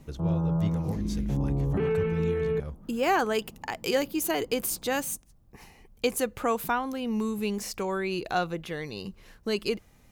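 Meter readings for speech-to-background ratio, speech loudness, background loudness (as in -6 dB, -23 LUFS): -2.5 dB, -31.0 LUFS, -28.5 LUFS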